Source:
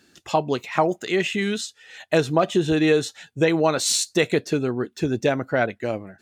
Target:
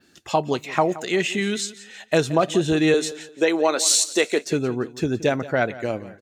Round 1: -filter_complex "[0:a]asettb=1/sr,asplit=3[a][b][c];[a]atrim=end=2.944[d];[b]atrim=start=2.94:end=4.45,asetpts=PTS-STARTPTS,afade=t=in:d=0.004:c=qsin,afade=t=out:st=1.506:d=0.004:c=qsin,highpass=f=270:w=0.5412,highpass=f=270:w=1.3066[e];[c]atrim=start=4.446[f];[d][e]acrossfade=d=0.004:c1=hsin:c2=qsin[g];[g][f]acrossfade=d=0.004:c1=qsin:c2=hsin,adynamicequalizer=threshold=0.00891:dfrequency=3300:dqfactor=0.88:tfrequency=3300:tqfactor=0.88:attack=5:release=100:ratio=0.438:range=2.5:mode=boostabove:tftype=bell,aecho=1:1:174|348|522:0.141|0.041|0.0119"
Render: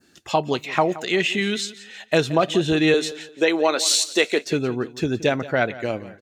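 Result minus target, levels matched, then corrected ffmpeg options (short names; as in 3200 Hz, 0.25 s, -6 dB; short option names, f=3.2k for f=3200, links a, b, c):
8000 Hz band -3.5 dB
-filter_complex "[0:a]asettb=1/sr,asplit=3[a][b][c];[a]atrim=end=2.944[d];[b]atrim=start=2.94:end=4.45,asetpts=PTS-STARTPTS,afade=t=in:d=0.004:c=qsin,afade=t=out:st=1.506:d=0.004:c=qsin,highpass=f=270:w=0.5412,highpass=f=270:w=1.3066[e];[c]atrim=start=4.446[f];[d][e]acrossfade=d=0.004:c1=hsin:c2=qsin[g];[g][f]acrossfade=d=0.004:c1=qsin:c2=hsin,adynamicequalizer=threshold=0.00891:dfrequency=7800:dqfactor=0.88:tfrequency=7800:tqfactor=0.88:attack=5:release=100:ratio=0.438:range=2.5:mode=boostabove:tftype=bell,aecho=1:1:174|348|522:0.141|0.041|0.0119"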